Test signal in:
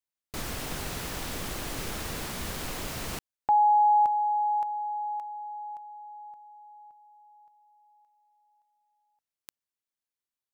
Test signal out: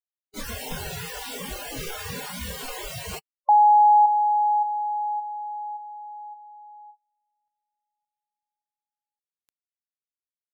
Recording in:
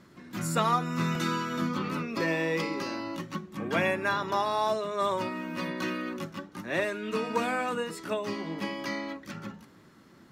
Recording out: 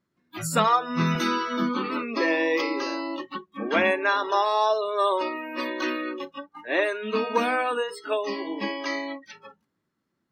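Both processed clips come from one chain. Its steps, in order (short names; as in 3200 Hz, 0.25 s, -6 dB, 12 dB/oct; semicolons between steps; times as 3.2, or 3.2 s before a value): spectral noise reduction 28 dB; gain +5.5 dB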